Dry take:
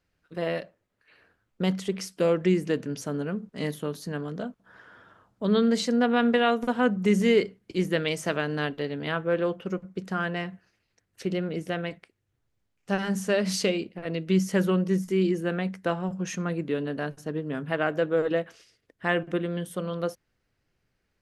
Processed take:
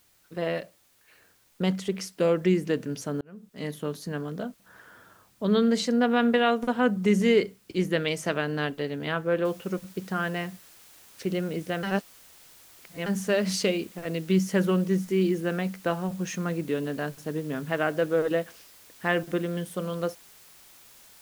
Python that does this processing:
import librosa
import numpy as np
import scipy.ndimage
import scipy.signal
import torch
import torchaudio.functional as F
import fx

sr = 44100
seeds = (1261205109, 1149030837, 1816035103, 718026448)

y = fx.noise_floor_step(x, sr, seeds[0], at_s=9.45, before_db=-64, after_db=-53, tilt_db=0.0)
y = fx.edit(y, sr, fx.fade_in_span(start_s=3.21, length_s=0.66),
    fx.reverse_span(start_s=11.83, length_s=1.23), tone=tone)